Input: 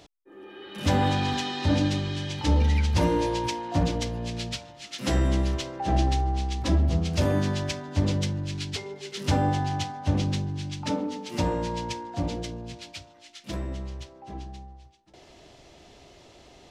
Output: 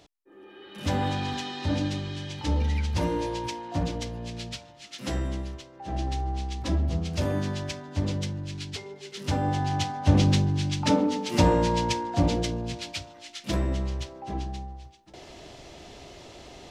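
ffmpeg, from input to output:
-af "volume=16dB,afade=t=out:st=4.96:d=0.73:silence=0.316228,afade=t=in:st=5.69:d=0.61:silence=0.298538,afade=t=in:st=9.41:d=0.87:silence=0.334965"

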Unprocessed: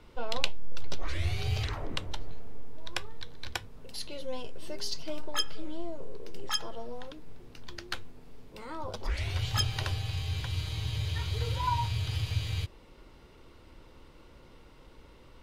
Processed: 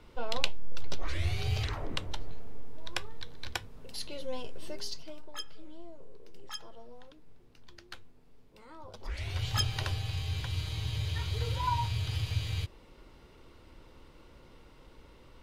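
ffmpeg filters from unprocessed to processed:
-af "volume=9dB,afade=t=out:st=4.63:d=0.53:silence=0.316228,afade=t=in:st=8.9:d=0.6:silence=0.334965"

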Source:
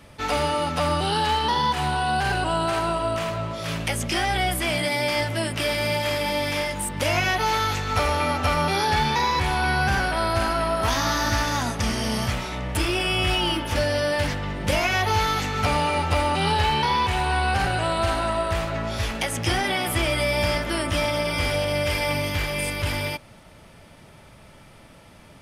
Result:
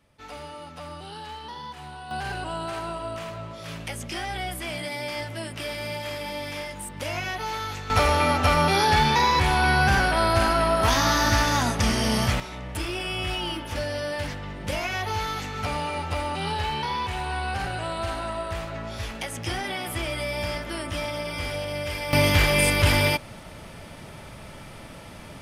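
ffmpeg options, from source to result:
-af "asetnsamples=n=441:p=0,asendcmd='2.11 volume volume -8dB;7.9 volume volume 2dB;12.4 volume volume -6.5dB;22.13 volume volume 6.5dB',volume=-16dB"

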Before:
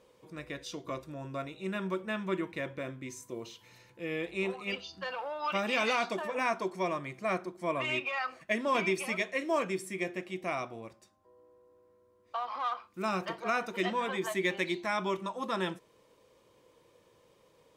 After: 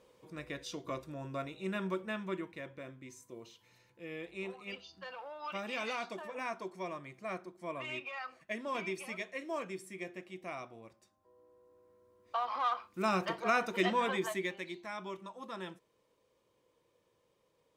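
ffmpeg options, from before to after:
-af "volume=8dB,afade=t=out:st=1.85:d=0.72:silence=0.446684,afade=t=in:st=10.81:d=1.56:silence=0.334965,afade=t=out:st=14.09:d=0.46:silence=0.266073"

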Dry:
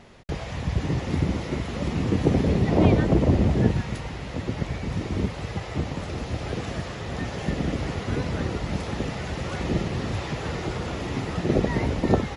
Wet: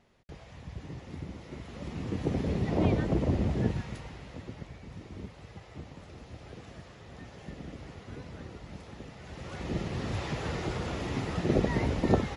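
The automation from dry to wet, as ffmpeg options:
-af "volume=4.5dB,afade=t=in:st=1.37:d=1.27:silence=0.375837,afade=t=out:st=3.71:d=1.02:silence=0.375837,afade=t=in:st=9.18:d=1.09:silence=0.237137"

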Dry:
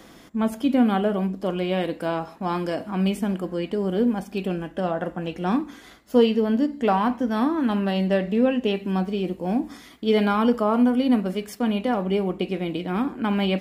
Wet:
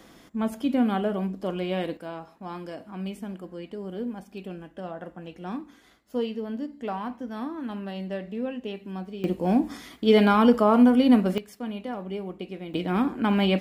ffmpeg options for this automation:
-af "asetnsamples=n=441:p=0,asendcmd='1.97 volume volume -11dB;9.24 volume volume 2dB;11.38 volume volume -10dB;12.74 volume volume 0.5dB',volume=-4dB"

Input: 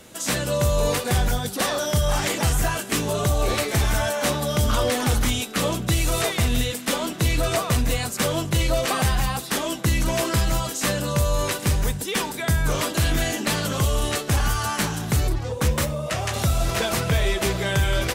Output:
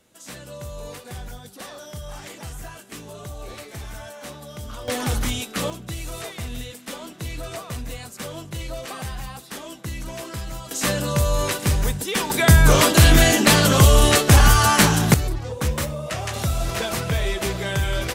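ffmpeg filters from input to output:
-af "asetnsamples=n=441:p=0,asendcmd='4.88 volume volume -2.5dB;5.7 volume volume -10.5dB;10.71 volume volume 1dB;12.3 volume volume 9dB;15.14 volume volume -2dB',volume=-14.5dB"

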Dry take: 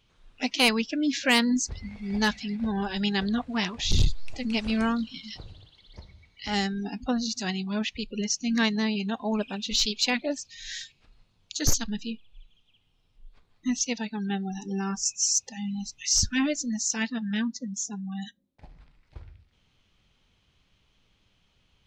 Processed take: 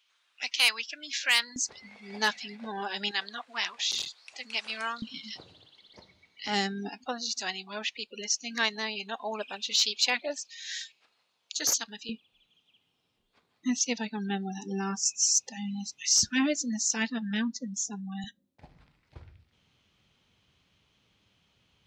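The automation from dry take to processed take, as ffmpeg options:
-af "asetnsamples=n=441:p=0,asendcmd='1.56 highpass f 480;3.11 highpass f 990;5.02 highpass f 240;6.89 highpass f 570;12.09 highpass f 200;18.24 highpass f 85',highpass=1.4k"

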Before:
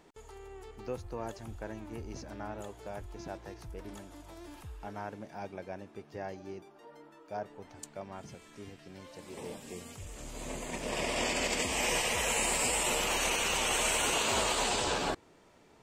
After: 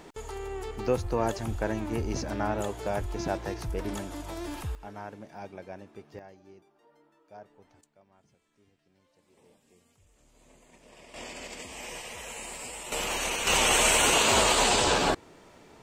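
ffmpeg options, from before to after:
-af "asetnsamples=n=441:p=0,asendcmd='4.75 volume volume -0.5dB;6.19 volume volume -9.5dB;7.81 volume volume -19dB;11.14 volume volume -10dB;12.92 volume volume 0dB;13.47 volume volume 7.5dB',volume=11.5dB"

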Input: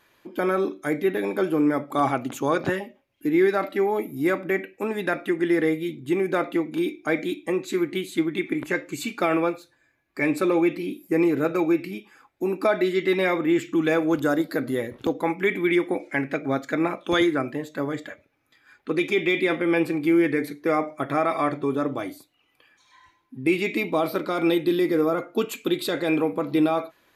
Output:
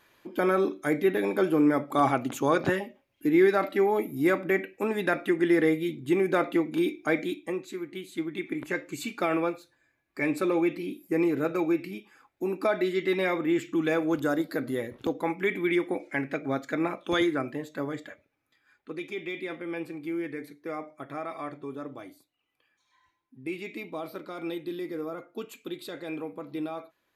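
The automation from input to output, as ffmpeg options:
-af "volume=7dB,afade=t=out:st=7.01:d=0.78:silence=0.266073,afade=t=in:st=7.79:d=1.07:silence=0.398107,afade=t=out:st=17.76:d=1.2:silence=0.375837"

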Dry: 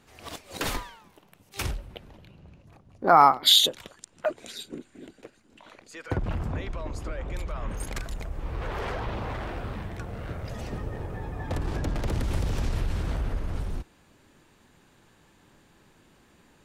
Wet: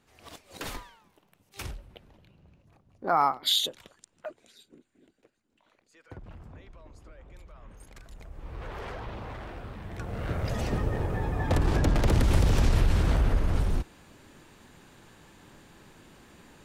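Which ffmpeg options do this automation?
-af "volume=14.5dB,afade=t=out:st=3.93:d=0.55:silence=0.354813,afade=t=in:st=7.96:d=0.64:silence=0.316228,afade=t=in:st=9.8:d=0.63:silence=0.251189"

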